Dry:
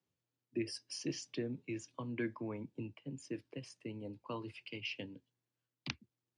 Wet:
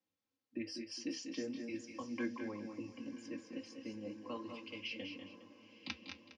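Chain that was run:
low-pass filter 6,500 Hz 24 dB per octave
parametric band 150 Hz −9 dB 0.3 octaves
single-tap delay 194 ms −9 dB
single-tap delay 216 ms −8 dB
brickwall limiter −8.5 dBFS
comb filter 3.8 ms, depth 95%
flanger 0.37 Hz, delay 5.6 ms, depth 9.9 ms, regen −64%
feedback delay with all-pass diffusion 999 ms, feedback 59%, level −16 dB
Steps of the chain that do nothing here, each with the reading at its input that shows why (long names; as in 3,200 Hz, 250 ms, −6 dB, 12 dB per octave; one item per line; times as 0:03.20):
brickwall limiter −8.5 dBFS: peak of its input −18.0 dBFS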